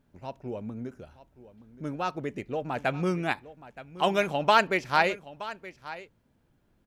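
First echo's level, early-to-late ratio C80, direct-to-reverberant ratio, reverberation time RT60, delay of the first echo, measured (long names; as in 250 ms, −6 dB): −16.5 dB, no reverb audible, no reverb audible, no reverb audible, 922 ms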